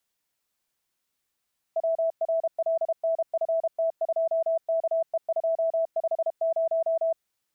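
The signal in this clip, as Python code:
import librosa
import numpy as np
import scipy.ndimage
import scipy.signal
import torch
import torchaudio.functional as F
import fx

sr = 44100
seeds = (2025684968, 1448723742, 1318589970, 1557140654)

y = fx.morse(sr, text='WRLNFT2KE250', wpm=32, hz=656.0, level_db=-21.5)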